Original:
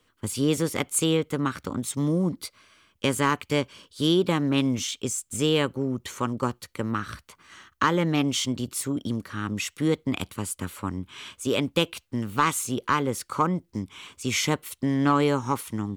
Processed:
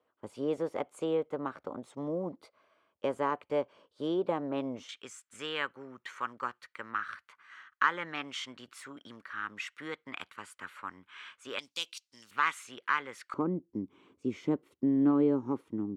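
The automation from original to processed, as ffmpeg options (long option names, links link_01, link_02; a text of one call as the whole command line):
ffmpeg -i in.wav -af "asetnsamples=nb_out_samples=441:pad=0,asendcmd='4.89 bandpass f 1600;11.59 bandpass f 5300;12.31 bandpass f 1800;13.34 bandpass f 320',bandpass=frequency=650:width_type=q:width=2:csg=0" out.wav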